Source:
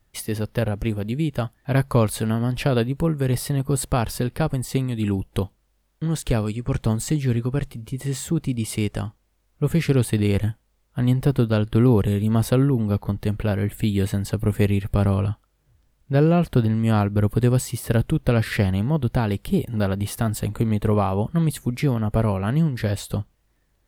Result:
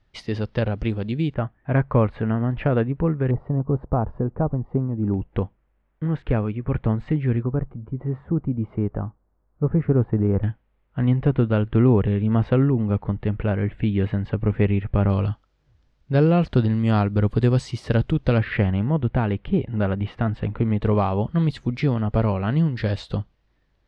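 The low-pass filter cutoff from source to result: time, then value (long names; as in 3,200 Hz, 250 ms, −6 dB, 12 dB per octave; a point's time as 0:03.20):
low-pass filter 24 dB per octave
4,800 Hz
from 0:01.34 2,200 Hz
from 0:03.31 1,100 Hz
from 0:05.14 2,300 Hz
from 0:07.43 1,300 Hz
from 0:10.43 2,700 Hz
from 0:15.10 5,500 Hz
from 0:18.38 2,800 Hz
from 0:20.81 4,800 Hz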